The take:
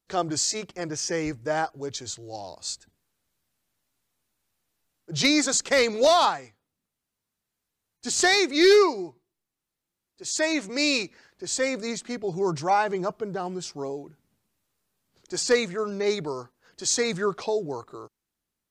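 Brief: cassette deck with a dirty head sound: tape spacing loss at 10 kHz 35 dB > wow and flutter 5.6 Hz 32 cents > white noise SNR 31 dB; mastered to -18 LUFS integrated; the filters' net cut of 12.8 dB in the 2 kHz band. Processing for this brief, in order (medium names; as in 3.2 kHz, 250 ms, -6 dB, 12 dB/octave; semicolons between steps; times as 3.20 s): tape spacing loss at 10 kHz 35 dB; peaking EQ 2 kHz -7 dB; wow and flutter 5.6 Hz 32 cents; white noise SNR 31 dB; trim +10.5 dB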